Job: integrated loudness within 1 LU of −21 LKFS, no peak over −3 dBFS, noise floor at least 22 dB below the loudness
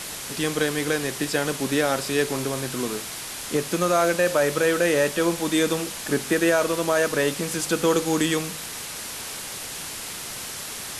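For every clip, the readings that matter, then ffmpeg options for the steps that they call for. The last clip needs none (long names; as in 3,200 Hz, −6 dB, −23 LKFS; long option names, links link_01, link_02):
background noise floor −35 dBFS; target noise floor −46 dBFS; integrated loudness −24.0 LKFS; sample peak −9.0 dBFS; target loudness −21.0 LKFS
→ -af "afftdn=noise_reduction=11:noise_floor=-35"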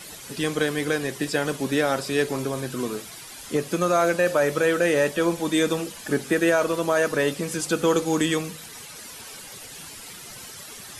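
background noise floor −41 dBFS; target noise floor −46 dBFS
→ -af "afftdn=noise_reduction=6:noise_floor=-41"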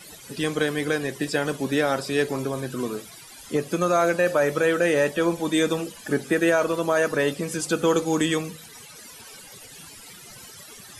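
background noise floor −45 dBFS; target noise floor −46 dBFS
→ -af "afftdn=noise_reduction=6:noise_floor=-45"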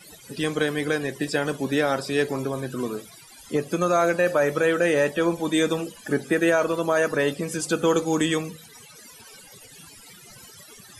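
background noise floor −48 dBFS; integrated loudness −24.0 LKFS; sample peak −10.0 dBFS; target loudness −21.0 LKFS
→ -af "volume=3dB"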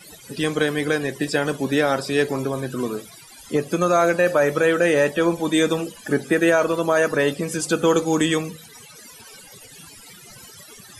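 integrated loudness −21.0 LKFS; sample peak −7.0 dBFS; background noise floor −45 dBFS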